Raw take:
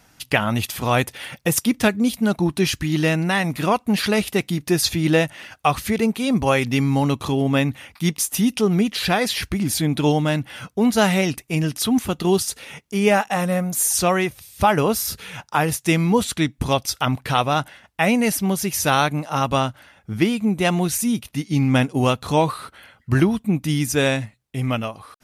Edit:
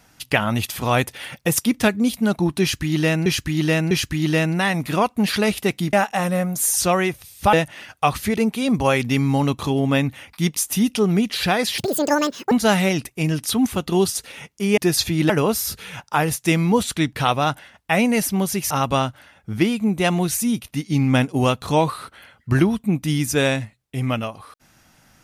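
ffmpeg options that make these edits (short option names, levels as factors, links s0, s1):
-filter_complex "[0:a]asplit=11[s0][s1][s2][s3][s4][s5][s6][s7][s8][s9][s10];[s0]atrim=end=3.262[s11];[s1]atrim=start=2.608:end=3.262[s12];[s2]atrim=start=2.608:end=4.632[s13];[s3]atrim=start=13.098:end=14.702[s14];[s4]atrim=start=5.148:end=9.404[s15];[s5]atrim=start=9.4:end=10.84,asetpts=PTS-STARTPTS,asetrate=86436,aresample=44100[s16];[s6]atrim=start=10.836:end=13.102[s17];[s7]atrim=start=4.628:end=5.152[s18];[s8]atrim=start=14.698:end=16.532[s19];[s9]atrim=start=17.218:end=18.802[s20];[s10]atrim=start=19.308[s21];[s11][s12]acrossfade=d=0.004:c1=hsin:c2=hsin[s22];[s22][s13]acrossfade=d=0.004:c1=hsin:c2=hsin[s23];[s23][s14]acrossfade=d=0.004:c1=hsin:c2=hsin[s24];[s24][s15]acrossfade=d=0.004:c1=hsin:c2=hsin[s25];[s25][s16]acrossfade=d=0.004:c1=hsin:c2=hsin[s26];[s26][s17]acrossfade=d=0.004:c1=hsin:c2=hsin[s27];[s27][s18]acrossfade=d=0.004:c1=hsin:c2=hsin[s28];[s28][s19]acrossfade=d=0.004:c1=hsin:c2=hsin[s29];[s29][s20]acrossfade=d=0.004:c1=hsin:c2=hsin[s30];[s30][s21]acrossfade=d=0.004:c1=hsin:c2=hsin"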